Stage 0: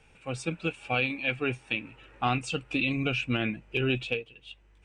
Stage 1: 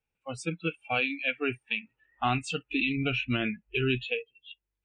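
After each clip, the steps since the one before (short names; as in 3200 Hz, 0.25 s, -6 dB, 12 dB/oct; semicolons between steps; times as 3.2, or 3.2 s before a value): spectral noise reduction 28 dB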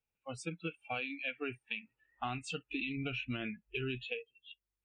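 compressor, threshold -28 dBFS, peak gain reduction 6 dB; gain -6 dB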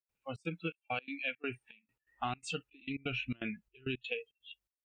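step gate ".xxx.xxx..x" 167 bpm -24 dB; gain +2 dB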